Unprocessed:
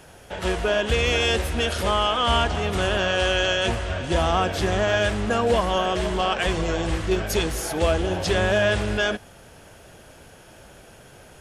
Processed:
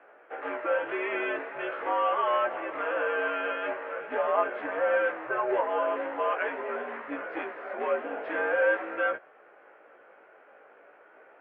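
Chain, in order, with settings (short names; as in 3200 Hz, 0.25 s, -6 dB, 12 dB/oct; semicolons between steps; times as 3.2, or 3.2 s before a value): chorus 0.43 Hz, delay 15.5 ms, depth 3.6 ms; mistuned SSB -91 Hz 550–2200 Hz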